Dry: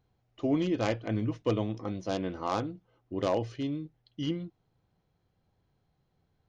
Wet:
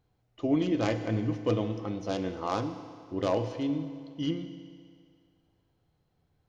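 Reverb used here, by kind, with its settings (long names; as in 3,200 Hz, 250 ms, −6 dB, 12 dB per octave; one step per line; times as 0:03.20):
feedback delay network reverb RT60 2.3 s, low-frequency decay 0.75×, high-frequency decay 0.9×, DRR 8 dB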